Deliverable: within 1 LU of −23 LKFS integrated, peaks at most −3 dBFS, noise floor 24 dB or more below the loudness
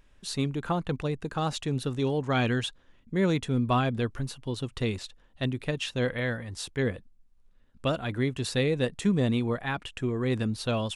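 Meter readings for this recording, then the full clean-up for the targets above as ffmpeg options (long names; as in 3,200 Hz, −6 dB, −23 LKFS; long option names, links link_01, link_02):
integrated loudness −29.5 LKFS; sample peak −13.5 dBFS; target loudness −23.0 LKFS
→ -af "volume=6.5dB"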